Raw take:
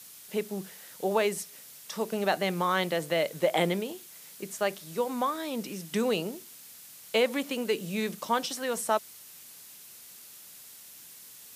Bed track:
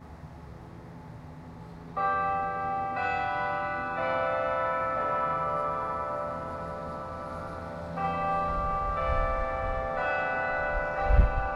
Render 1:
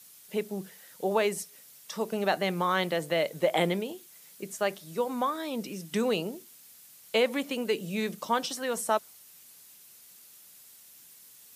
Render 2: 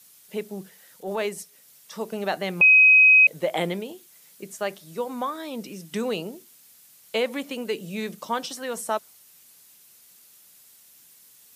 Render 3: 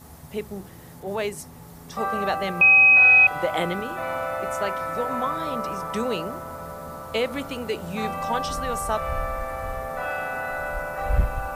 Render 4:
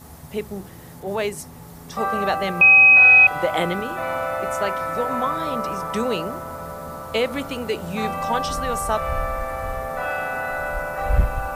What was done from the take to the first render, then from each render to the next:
broadband denoise 6 dB, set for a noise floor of −50 dBFS
0:00.63–0:01.91: transient designer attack −7 dB, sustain −2 dB; 0:02.61–0:03.27: beep over 2,530 Hz −10.5 dBFS
mix in bed track 0 dB
level +3 dB

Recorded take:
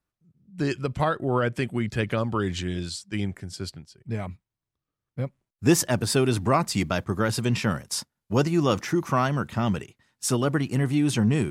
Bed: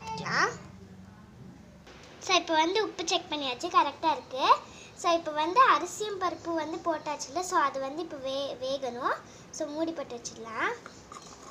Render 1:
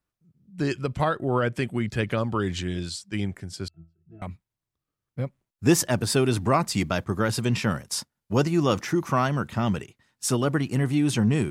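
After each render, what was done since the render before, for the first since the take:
0:03.68–0:04.22: resonances in every octave E, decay 0.29 s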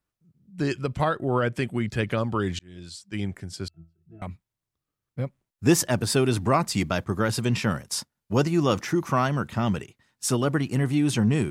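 0:02.59–0:03.33: fade in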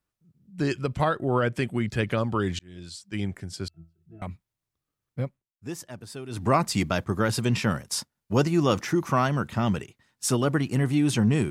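0:05.23–0:06.49: duck −16.5 dB, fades 0.20 s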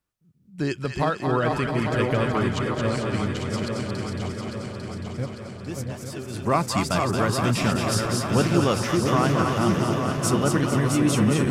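feedback delay that plays each chunk backwards 424 ms, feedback 74%, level −5 dB
on a send: echo with a time of its own for lows and highs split 650 Hz, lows 669 ms, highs 224 ms, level −5 dB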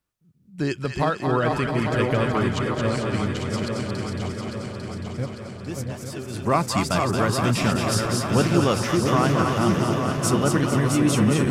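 level +1 dB

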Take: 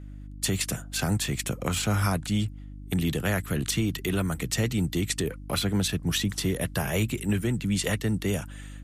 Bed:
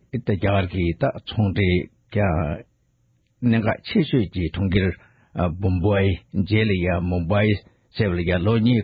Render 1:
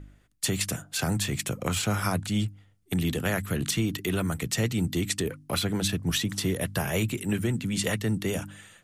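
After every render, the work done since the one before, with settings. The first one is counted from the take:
hum removal 50 Hz, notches 6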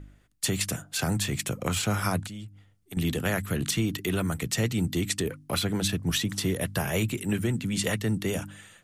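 0:02.27–0:02.97: downward compressor 2.5 to 1, threshold −43 dBFS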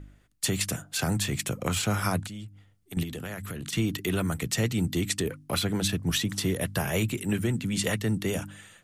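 0:03.03–0:03.73: downward compressor 12 to 1, threshold −32 dBFS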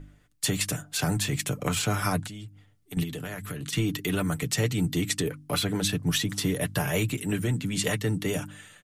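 comb filter 6.8 ms, depth 47%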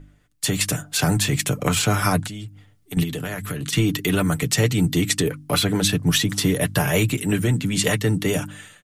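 automatic gain control gain up to 7 dB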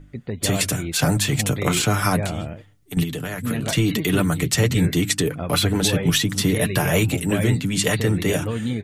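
mix in bed −7.5 dB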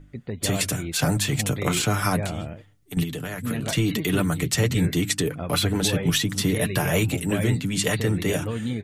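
level −3 dB

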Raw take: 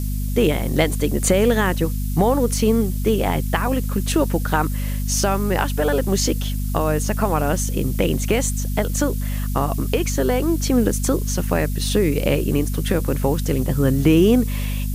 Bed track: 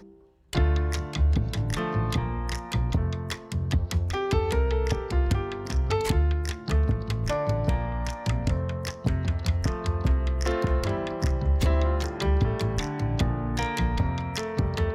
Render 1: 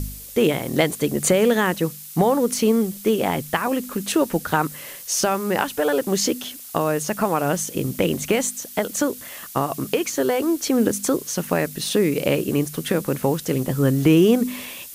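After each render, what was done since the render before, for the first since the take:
hum removal 50 Hz, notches 5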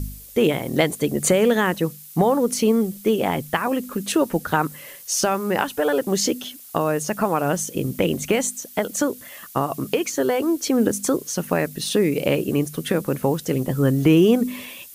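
broadband denoise 6 dB, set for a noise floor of −39 dBFS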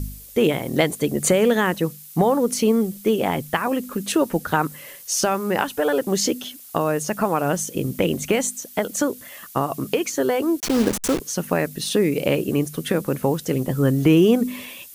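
0:10.60–0:11.20: hold until the input has moved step −22 dBFS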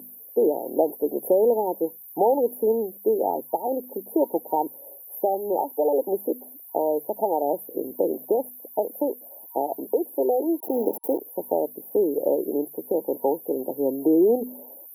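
high-pass filter 330 Hz 24 dB per octave
brick-wall band-stop 940–11,000 Hz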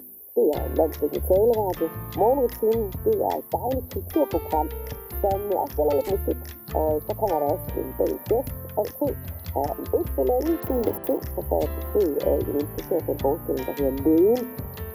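mix in bed track −9 dB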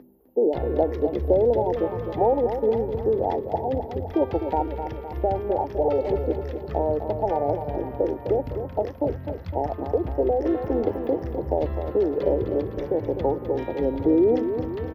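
high-frequency loss of the air 240 metres
repeating echo 255 ms, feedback 54%, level −8.5 dB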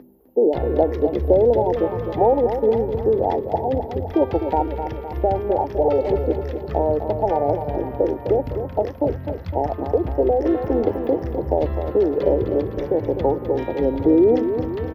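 level +4 dB

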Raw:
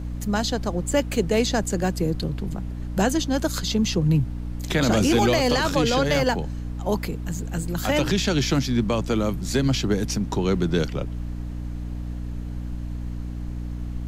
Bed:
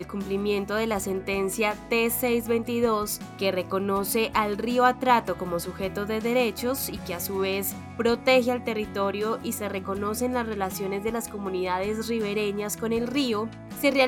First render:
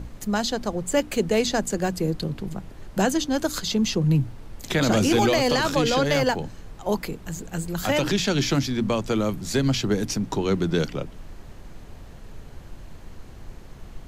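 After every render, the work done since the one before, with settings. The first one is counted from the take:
mains-hum notches 60/120/180/240/300 Hz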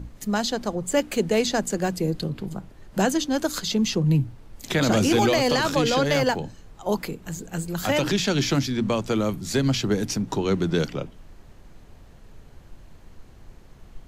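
noise reduction from a noise print 6 dB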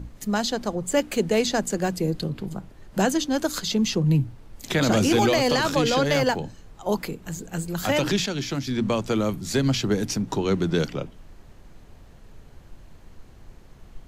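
0:08.26–0:08.67: clip gain −6 dB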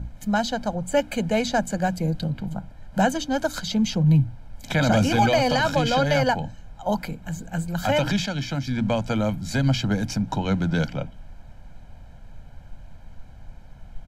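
high-shelf EQ 4,200 Hz −9 dB
comb filter 1.3 ms, depth 78%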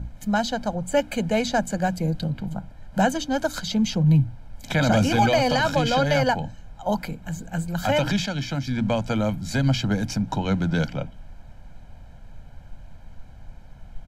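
no processing that can be heard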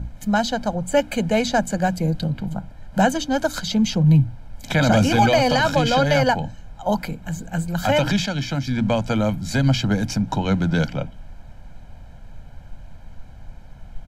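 level +3 dB

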